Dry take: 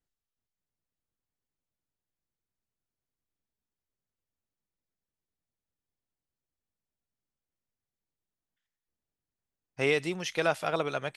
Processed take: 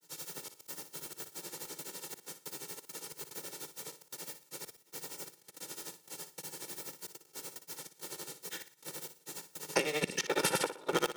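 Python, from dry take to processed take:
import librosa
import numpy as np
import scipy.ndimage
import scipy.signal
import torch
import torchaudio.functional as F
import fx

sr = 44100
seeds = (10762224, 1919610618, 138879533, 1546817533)

p1 = fx.cycle_switch(x, sr, every=3, mode='inverted')
p2 = scipy.signal.sosfilt(scipy.signal.butter(8, 160.0, 'highpass', fs=sr, output='sos'), p1)
p3 = fx.bass_treble(p2, sr, bass_db=5, treble_db=9)
p4 = p3 + 0.86 * np.pad(p3, (int(2.2 * sr / 1000.0), 0))[:len(p3)]
p5 = fx.over_compress(p4, sr, threshold_db=-36.0, ratio=-1.0)
p6 = fx.step_gate(p5, sr, bpm=114, pattern='.xxx.x.xx.xx', floor_db=-24.0, edge_ms=4.5)
p7 = fx.granulator(p6, sr, seeds[0], grain_ms=100.0, per_s=12.0, spray_ms=100.0, spread_st=0)
p8 = p7 + fx.room_flutter(p7, sr, wall_m=10.0, rt60_s=0.31, dry=0)
p9 = fx.band_squash(p8, sr, depth_pct=100)
y = p9 * librosa.db_to_amplitude(8.0)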